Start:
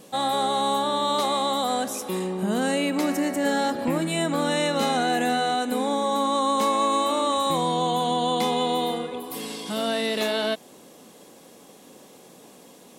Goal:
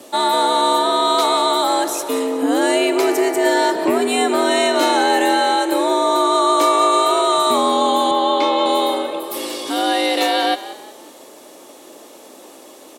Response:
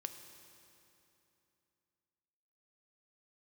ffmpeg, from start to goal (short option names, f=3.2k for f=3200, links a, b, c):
-filter_complex "[0:a]afreqshift=82,asettb=1/sr,asplit=3[a][b][c];[a]atrim=end=8.114[d];[b]atrim=start=8.11:end=8.66,asetpts=PTS-STARTPTS,afade=t=in:d=0.004:c=qsin,afade=t=out:st=0.546:d=0.004:c=qsin,highpass=270,lowpass=4k[e];[c]atrim=start=8.656[f];[d][e]acrossfade=d=0.004:c1=hsin:c2=qsin[g];[g][f]acrossfade=d=0.004:c1=qsin:c2=hsin,asplit=5[h][i][j][k][l];[i]adelay=182,afreqshift=45,volume=-15dB[m];[j]adelay=364,afreqshift=90,volume=-23.2dB[n];[k]adelay=546,afreqshift=135,volume=-31.4dB[o];[l]adelay=728,afreqshift=180,volume=-39.5dB[p];[h][m][n][o][p]amix=inputs=5:normalize=0,volume=7.5dB"